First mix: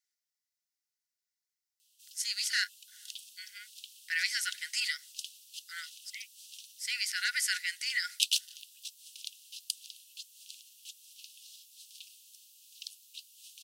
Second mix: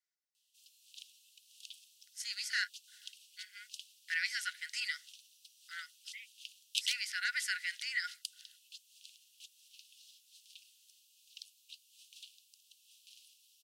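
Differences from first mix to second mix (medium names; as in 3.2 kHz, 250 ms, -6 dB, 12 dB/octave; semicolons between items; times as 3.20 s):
background: entry -1.45 s; master: add tilt EQ -3 dB/octave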